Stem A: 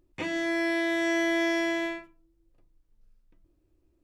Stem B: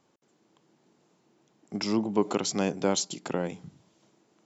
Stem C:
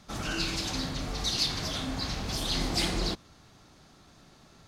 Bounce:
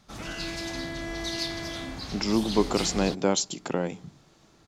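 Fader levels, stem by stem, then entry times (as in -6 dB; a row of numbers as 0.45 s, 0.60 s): -10.0 dB, +2.0 dB, -4.5 dB; 0.00 s, 0.40 s, 0.00 s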